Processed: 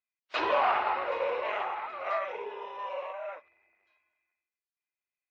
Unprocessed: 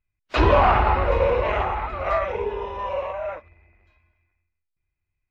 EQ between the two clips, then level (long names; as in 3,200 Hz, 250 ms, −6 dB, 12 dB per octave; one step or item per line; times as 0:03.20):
band-pass filter 510–4,600 Hz
high-shelf EQ 3,500 Hz +7 dB
−8.0 dB